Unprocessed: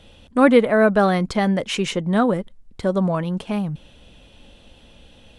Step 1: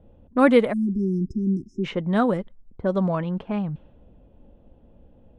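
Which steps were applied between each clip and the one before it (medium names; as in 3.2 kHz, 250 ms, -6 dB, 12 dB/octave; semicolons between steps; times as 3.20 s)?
spectral selection erased 0.73–1.84 s, 400–5000 Hz; level-controlled noise filter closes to 590 Hz, open at -13 dBFS; treble shelf 8.5 kHz -4 dB; trim -2.5 dB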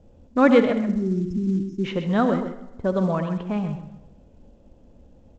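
delay 130 ms -9 dB; reverberation RT60 1.0 s, pre-delay 56 ms, DRR 10.5 dB; µ-law 128 kbps 16 kHz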